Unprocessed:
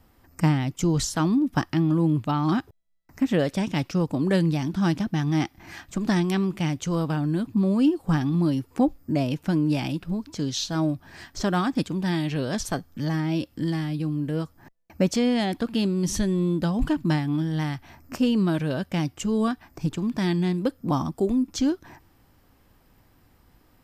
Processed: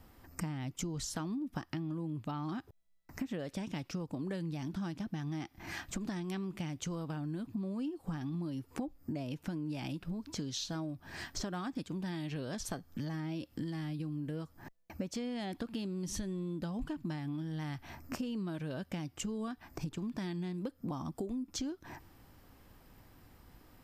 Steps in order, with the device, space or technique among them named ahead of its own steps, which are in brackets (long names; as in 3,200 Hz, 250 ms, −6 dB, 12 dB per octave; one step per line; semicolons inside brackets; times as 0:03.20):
serial compression, leveller first (downward compressor 2 to 1, threshold −28 dBFS, peak gain reduction 7.5 dB; downward compressor 4 to 1, threshold −37 dBFS, peak gain reduction 13 dB)